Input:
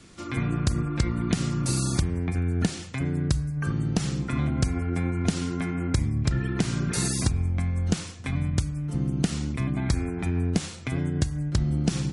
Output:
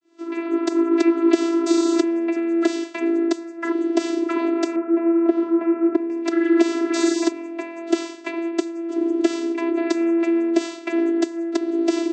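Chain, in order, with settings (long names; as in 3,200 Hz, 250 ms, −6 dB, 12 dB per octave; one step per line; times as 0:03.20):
fade in at the beginning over 0.77 s
channel vocoder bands 16, saw 335 Hz
0:04.76–0:06.10: low-pass filter 1,200 Hz 12 dB per octave
level +8 dB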